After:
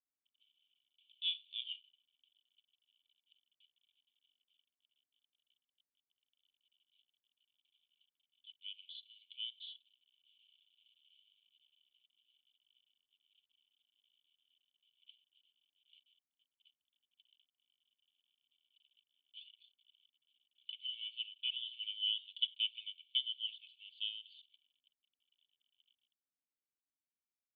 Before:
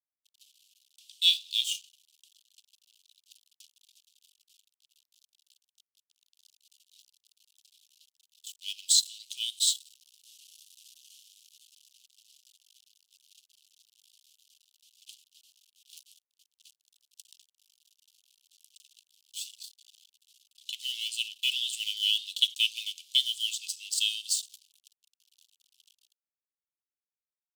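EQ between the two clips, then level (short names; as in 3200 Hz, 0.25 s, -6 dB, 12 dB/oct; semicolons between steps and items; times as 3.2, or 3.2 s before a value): high shelf 3400 Hz +2 dB; dynamic EQ 2000 Hz, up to -4 dB, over -39 dBFS, Q 0.82; vocal tract filter i; +5.0 dB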